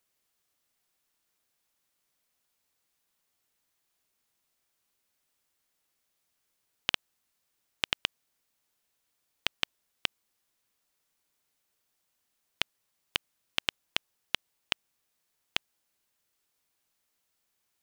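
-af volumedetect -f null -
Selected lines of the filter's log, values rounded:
mean_volume: -43.2 dB
max_volume: -4.8 dB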